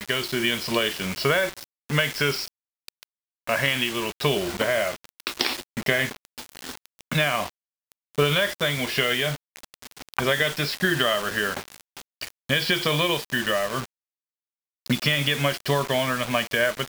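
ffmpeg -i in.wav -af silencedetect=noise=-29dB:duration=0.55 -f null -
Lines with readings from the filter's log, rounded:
silence_start: 13.85
silence_end: 14.86 | silence_duration: 1.01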